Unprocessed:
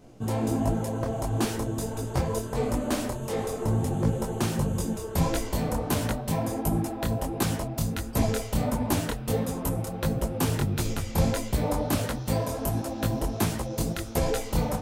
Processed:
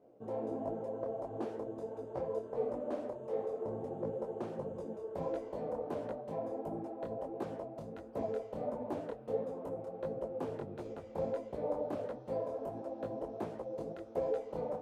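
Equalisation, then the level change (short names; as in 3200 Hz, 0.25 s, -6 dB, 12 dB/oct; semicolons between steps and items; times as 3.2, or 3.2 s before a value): band-pass 520 Hz, Q 2.3; -3.5 dB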